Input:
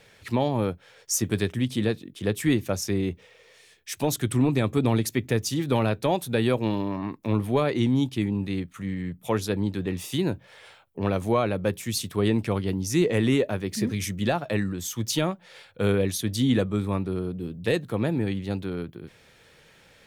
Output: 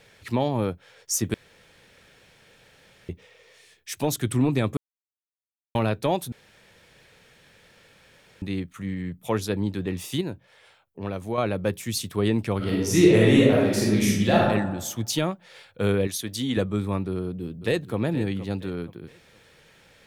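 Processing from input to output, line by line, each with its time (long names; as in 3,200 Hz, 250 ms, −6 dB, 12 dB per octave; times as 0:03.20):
0:01.34–0:03.09: fill with room tone
0:04.77–0:05.75: silence
0:06.32–0:08.42: fill with room tone
0:10.21–0:11.38: clip gain −6 dB
0:12.57–0:14.45: thrown reverb, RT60 1.1 s, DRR −5 dB
0:16.07–0:16.57: low-shelf EQ 250 Hz −10.5 dB
0:17.14–0:17.98: delay throw 470 ms, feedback 35%, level −13.5 dB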